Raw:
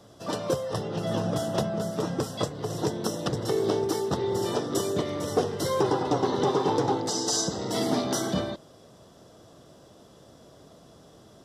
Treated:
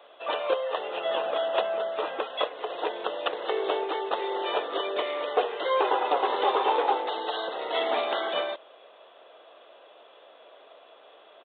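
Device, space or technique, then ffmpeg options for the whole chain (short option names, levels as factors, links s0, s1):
musical greeting card: -af "aresample=8000,aresample=44100,highpass=f=510:w=0.5412,highpass=f=510:w=1.3066,equalizer=f=2500:t=o:w=0.33:g=9.5,volume=1.68"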